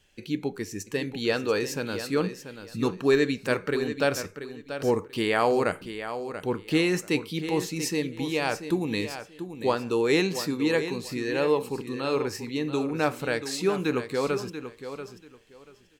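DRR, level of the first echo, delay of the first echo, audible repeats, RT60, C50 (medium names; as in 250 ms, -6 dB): no reverb, -10.5 dB, 686 ms, 2, no reverb, no reverb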